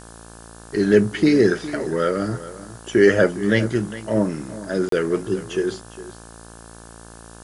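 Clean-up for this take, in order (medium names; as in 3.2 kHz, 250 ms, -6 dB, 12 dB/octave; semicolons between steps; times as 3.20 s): de-hum 56.6 Hz, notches 31; interpolate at 4.89 s, 33 ms; noise print and reduce 22 dB; inverse comb 409 ms -15.5 dB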